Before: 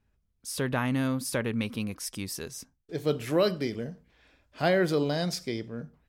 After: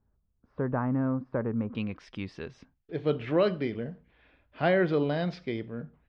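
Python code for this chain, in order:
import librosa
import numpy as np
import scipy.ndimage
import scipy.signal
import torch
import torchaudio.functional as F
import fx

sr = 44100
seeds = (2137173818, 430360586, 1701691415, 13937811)

y = fx.lowpass(x, sr, hz=fx.steps((0.0, 1300.0), (1.75, 3200.0)), slope=24)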